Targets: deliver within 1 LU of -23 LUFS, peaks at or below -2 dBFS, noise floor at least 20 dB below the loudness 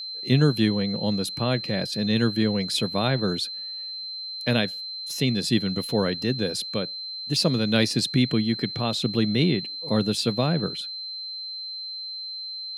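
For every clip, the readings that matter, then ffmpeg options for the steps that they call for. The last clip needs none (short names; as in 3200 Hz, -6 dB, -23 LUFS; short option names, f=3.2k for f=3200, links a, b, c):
steady tone 4100 Hz; tone level -32 dBFS; loudness -25.0 LUFS; peak -7.0 dBFS; loudness target -23.0 LUFS
-> -af "bandreject=f=4.1k:w=30"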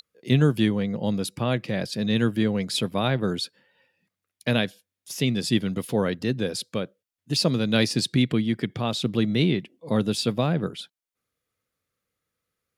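steady tone none; loudness -25.0 LUFS; peak -7.0 dBFS; loudness target -23.0 LUFS
-> -af "volume=2dB"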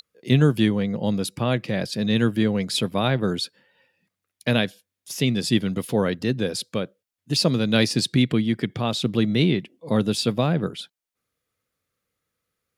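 loudness -23.0 LUFS; peak -5.0 dBFS; noise floor -85 dBFS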